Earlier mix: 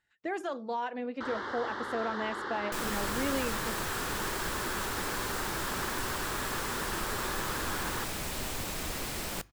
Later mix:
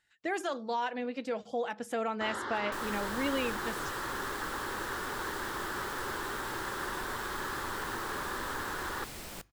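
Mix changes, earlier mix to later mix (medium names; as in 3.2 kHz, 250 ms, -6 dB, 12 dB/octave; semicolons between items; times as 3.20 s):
speech: add treble shelf 2.3 kHz +9 dB; first sound: entry +1.00 s; second sound -7.5 dB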